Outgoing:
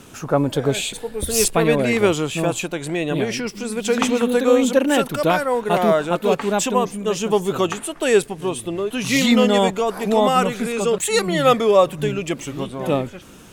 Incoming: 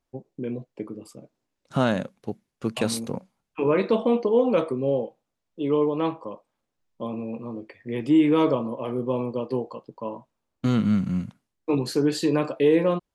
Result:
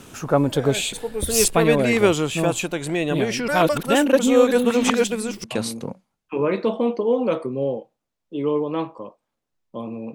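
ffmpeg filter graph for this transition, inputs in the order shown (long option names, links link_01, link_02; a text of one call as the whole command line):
ffmpeg -i cue0.wav -i cue1.wav -filter_complex "[0:a]apad=whole_dur=10.14,atrim=end=10.14,asplit=2[link_01][link_02];[link_01]atrim=end=3.482[link_03];[link_02]atrim=start=3.478:end=5.442,asetpts=PTS-STARTPTS,areverse[link_04];[1:a]atrim=start=2.698:end=7.4[link_05];[link_03][link_04]acrossfade=duration=0.004:curve1=hsin:curve2=hsin[link_06];[link_06][link_05]acrossfade=duration=0.004:curve1=hsin:curve2=hsin" out.wav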